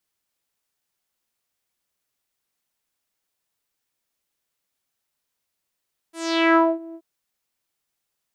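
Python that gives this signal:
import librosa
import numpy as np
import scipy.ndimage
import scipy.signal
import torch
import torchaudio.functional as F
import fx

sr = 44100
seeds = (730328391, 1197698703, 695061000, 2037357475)

y = fx.sub_voice(sr, note=64, wave='saw', cutoff_hz=500.0, q=3.1, env_oct=4.5, env_s=0.63, attack_ms=425.0, decay_s=0.23, sustain_db=-23.0, release_s=0.06, note_s=0.82, slope=12)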